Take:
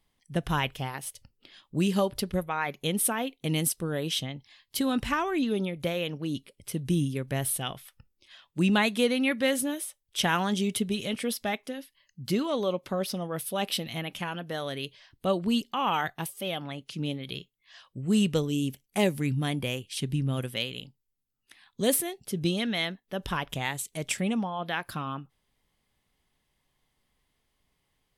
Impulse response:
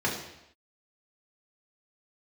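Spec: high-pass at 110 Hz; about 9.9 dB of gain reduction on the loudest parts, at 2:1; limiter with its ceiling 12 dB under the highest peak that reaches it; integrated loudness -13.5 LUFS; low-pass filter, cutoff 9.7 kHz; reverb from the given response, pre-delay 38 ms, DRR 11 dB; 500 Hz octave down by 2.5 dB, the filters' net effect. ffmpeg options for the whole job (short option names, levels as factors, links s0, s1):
-filter_complex "[0:a]highpass=110,lowpass=9700,equalizer=f=500:t=o:g=-3,acompressor=threshold=0.01:ratio=2,alimiter=level_in=3.16:limit=0.0631:level=0:latency=1,volume=0.316,asplit=2[s0][s1];[1:a]atrim=start_sample=2205,adelay=38[s2];[s1][s2]afir=irnorm=-1:irlink=0,volume=0.0794[s3];[s0][s3]amix=inputs=2:normalize=0,volume=29.9"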